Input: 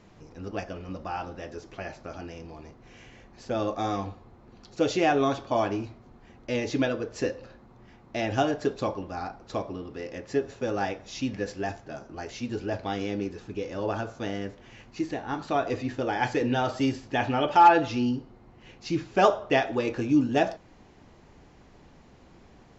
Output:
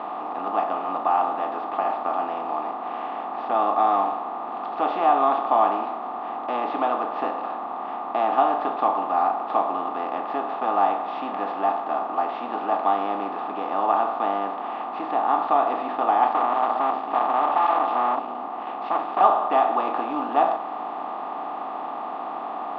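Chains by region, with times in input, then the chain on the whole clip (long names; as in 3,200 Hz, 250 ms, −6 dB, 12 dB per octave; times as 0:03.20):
0:16.27–0:19.21: hard clipping −21.5 dBFS + single-tap delay 270 ms −21 dB + saturating transformer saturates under 1,200 Hz
whole clip: compressor on every frequency bin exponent 0.4; elliptic band-pass filter 210–3,500 Hz, stop band 40 dB; flat-topped bell 940 Hz +15.5 dB 1.1 octaves; level −11 dB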